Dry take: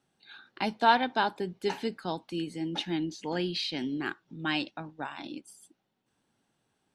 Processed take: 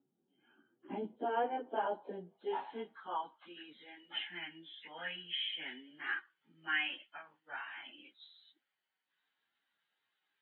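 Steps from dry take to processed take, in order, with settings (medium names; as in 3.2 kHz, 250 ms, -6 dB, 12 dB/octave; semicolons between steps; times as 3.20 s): knee-point frequency compression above 2.9 kHz 4:1; plain phase-vocoder stretch 1.5×; band-pass sweep 290 Hz -> 1.9 kHz, 0.86–4.07 s; trim +4 dB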